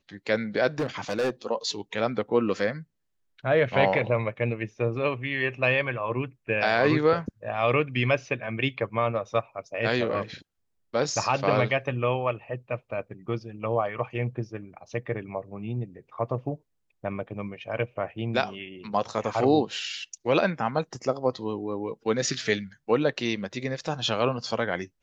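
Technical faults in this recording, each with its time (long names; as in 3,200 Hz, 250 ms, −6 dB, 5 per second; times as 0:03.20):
0:00.79–0:01.30: clipping −22.5 dBFS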